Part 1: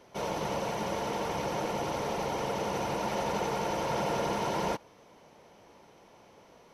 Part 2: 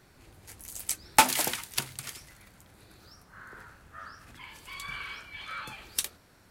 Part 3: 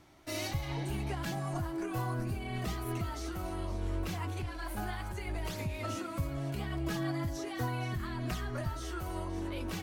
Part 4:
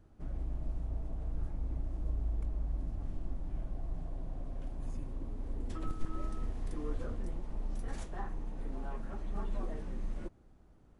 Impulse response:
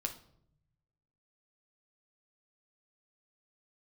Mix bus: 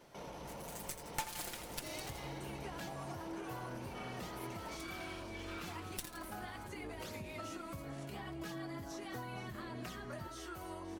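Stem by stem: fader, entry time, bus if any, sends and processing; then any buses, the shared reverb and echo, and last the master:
−5.5 dB, 0.00 s, no send, no echo send, brickwall limiter −35 dBFS, peak gain reduction 15 dB
−6.0 dB, 0.00 s, no send, echo send −12.5 dB, lower of the sound and its delayed copy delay 5.7 ms
−4.0 dB, 1.55 s, no send, no echo send, high-pass filter 230 Hz 6 dB per octave
−6.0 dB, 0.00 s, no send, no echo send, high-pass filter 130 Hz 12 dB per octave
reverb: not used
echo: repeating echo 83 ms, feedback 46%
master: downward compressor 2.5 to 1, threshold −42 dBFS, peak gain reduction 14.5 dB

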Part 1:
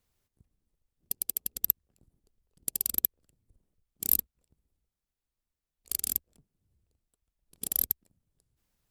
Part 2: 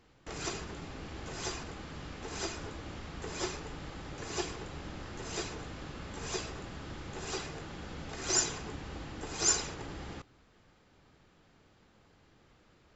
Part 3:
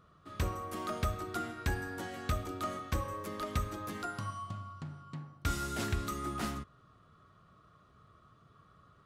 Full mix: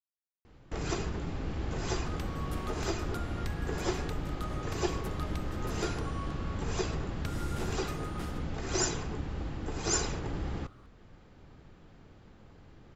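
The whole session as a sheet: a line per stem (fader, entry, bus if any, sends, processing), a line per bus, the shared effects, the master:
muted
+2.0 dB, 0.45 s, no send, spectral tilt −2 dB per octave
+1.0 dB, 1.80 s, no send, downward compressor, threshold −41 dBFS, peak gain reduction 13 dB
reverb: not used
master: speech leveller 2 s

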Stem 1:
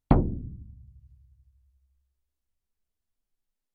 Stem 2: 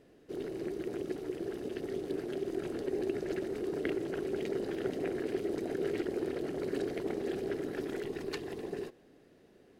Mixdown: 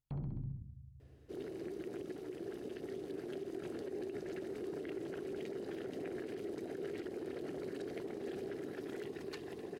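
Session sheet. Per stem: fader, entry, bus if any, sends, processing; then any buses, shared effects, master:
−9.0 dB, 0.00 s, no send, echo send −10 dB, parametric band 140 Hz +14 dB 0.55 octaves; downward compressor, threshold −16 dBFS, peak gain reduction 9 dB
−5.5 dB, 1.00 s, no send, no echo send, high-pass filter 58 Hz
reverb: not used
echo: repeating echo 65 ms, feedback 48%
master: brickwall limiter −34 dBFS, peak gain reduction 18 dB

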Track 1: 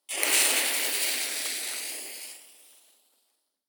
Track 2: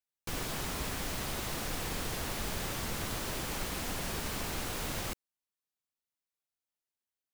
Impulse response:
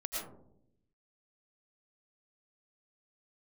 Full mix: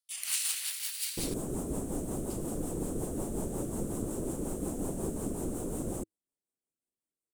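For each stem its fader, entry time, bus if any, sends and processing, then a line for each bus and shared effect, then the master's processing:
−4.0 dB, 0.00 s, muted 0:01.34–0:02.30, no send, high-pass filter 1,300 Hz 24 dB per octave
+1.5 dB, 0.90 s, no send, drawn EQ curve 100 Hz 0 dB, 320 Hz +10 dB, 4,800 Hz −19 dB, 8,300 Hz +5 dB, 15,000 Hz −9 dB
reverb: not used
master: parametric band 2,000 Hz −11 dB 1.2 octaves; rotating-speaker cabinet horn 5.5 Hz

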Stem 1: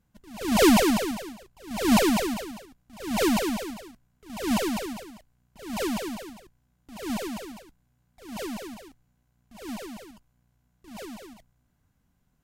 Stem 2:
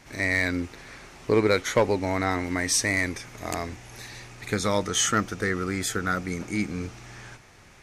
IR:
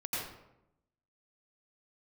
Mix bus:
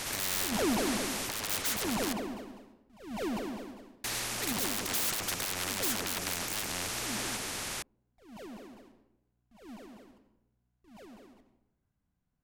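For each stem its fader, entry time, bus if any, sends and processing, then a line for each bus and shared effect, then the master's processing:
−12.5 dB, 0.00 s, send −11 dB, high-shelf EQ 3,500 Hz −7.5 dB
−3.5 dB, 0.00 s, muted 0:02.13–0:04.04, no send, sine wavefolder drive 18 dB, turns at −12 dBFS; every bin compressed towards the loudest bin 4 to 1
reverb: on, RT60 0.85 s, pre-delay 81 ms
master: brickwall limiter −20.5 dBFS, peak gain reduction 8.5 dB

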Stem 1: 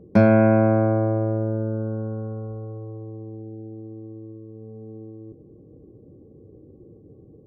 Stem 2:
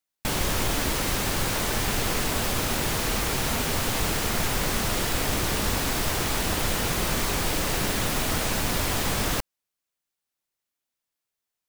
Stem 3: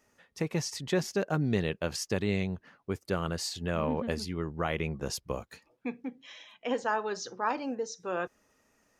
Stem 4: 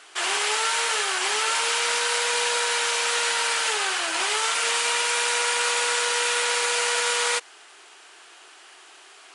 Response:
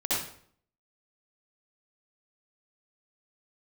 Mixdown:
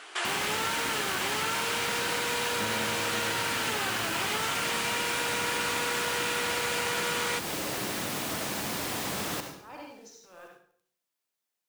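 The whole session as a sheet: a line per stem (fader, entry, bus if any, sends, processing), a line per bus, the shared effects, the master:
−15.0 dB, 2.45 s, no send, no processing
−2.0 dB, 0.00 s, send −15 dB, high-pass filter 150 Hz 12 dB per octave
−17.5 dB, 2.20 s, send −6.5 dB, high-pass filter 630 Hz 6 dB per octave; transient designer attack −12 dB, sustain +11 dB; bit reduction 8 bits
+3.0 dB, 0.00 s, no send, bass and treble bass +5 dB, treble −6 dB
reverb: on, RT60 0.60 s, pre-delay 57 ms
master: downward compressor 2 to 1, threshold −34 dBFS, peak gain reduction 9 dB

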